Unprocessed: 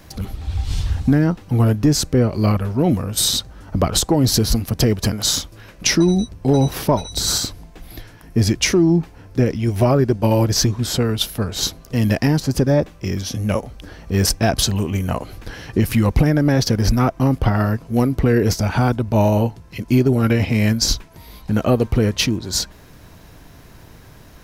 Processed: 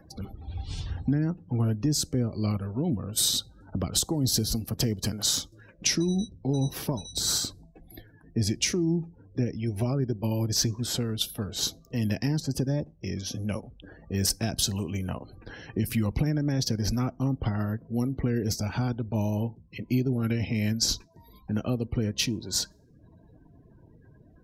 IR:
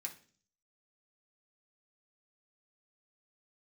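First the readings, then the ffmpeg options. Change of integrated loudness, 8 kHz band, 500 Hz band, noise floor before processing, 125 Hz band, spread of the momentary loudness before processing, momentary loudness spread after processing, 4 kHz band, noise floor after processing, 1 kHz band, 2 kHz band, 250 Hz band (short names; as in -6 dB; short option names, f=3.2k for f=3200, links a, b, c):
-10.0 dB, -6.5 dB, -14.5 dB, -44 dBFS, -10.5 dB, 8 LU, 10 LU, -7.5 dB, -56 dBFS, -16.0 dB, -12.5 dB, -10.5 dB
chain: -filter_complex "[0:a]acrossover=split=290|3000[a][b][c];[b]acompressor=threshold=-31dB:ratio=3[d];[a][d][c]amix=inputs=3:normalize=0,lowshelf=f=64:g=-11.5,acompressor=mode=upward:threshold=-39dB:ratio=2.5,asplit=2[e][f];[1:a]atrim=start_sample=2205,afade=t=out:st=0.24:d=0.01,atrim=end_sample=11025[g];[f][g]afir=irnorm=-1:irlink=0,volume=-13dB[h];[e][h]amix=inputs=2:normalize=0,afftdn=nr=34:nf=-40,volume=-7.5dB"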